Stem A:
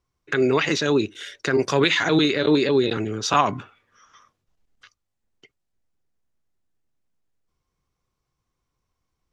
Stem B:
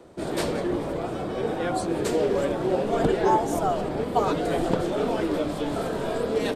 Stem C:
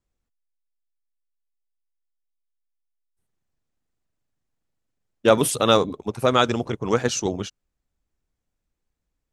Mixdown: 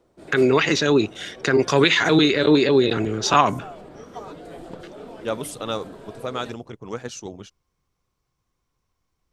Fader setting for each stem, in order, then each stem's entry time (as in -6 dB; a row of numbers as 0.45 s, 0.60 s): +2.5 dB, -14.0 dB, -10.5 dB; 0.00 s, 0.00 s, 0.00 s